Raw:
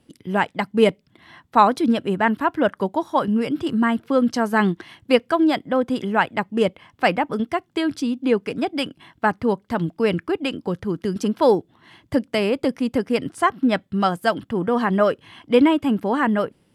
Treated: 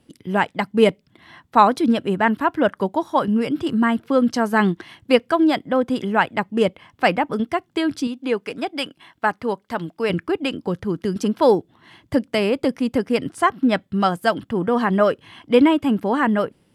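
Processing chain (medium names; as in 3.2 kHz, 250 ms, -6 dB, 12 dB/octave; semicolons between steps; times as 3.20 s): 8.07–10.10 s: bass shelf 300 Hz -11 dB; trim +1 dB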